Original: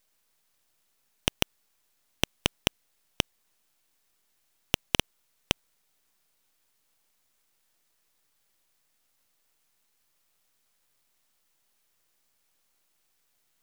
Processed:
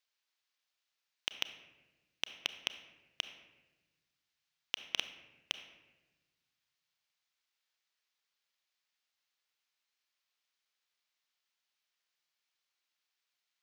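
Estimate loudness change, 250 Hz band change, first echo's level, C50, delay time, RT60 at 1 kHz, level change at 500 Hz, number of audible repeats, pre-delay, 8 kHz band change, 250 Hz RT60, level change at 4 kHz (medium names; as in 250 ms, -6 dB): -8.5 dB, -24.0 dB, no echo, 11.0 dB, no echo, 1.0 s, -18.5 dB, no echo, 29 ms, -12.5 dB, 1.8 s, -7.0 dB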